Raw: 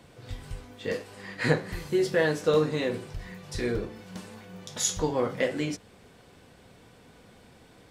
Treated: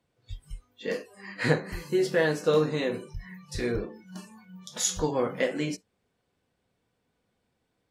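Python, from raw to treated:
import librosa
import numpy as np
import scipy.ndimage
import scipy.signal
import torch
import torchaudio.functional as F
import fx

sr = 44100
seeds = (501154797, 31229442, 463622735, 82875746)

y = fx.noise_reduce_blind(x, sr, reduce_db=22)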